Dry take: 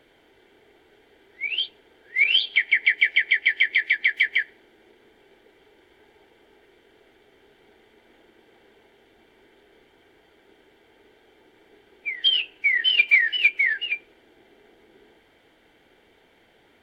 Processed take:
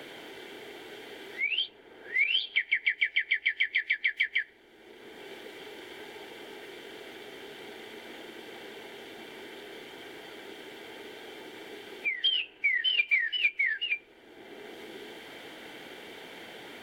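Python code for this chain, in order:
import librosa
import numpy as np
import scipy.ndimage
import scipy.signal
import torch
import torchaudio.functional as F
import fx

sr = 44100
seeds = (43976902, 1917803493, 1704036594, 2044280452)

y = fx.band_squash(x, sr, depth_pct=70)
y = F.gain(torch.from_numpy(y), -4.5).numpy()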